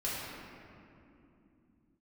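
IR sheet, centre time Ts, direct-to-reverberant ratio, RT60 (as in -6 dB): 0.154 s, -9.0 dB, 2.8 s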